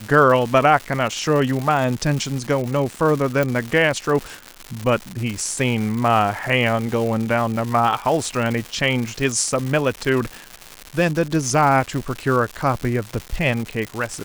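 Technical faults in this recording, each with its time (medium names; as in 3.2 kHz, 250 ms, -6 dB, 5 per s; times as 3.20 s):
crackle 290 per s -24 dBFS
3.43 s: pop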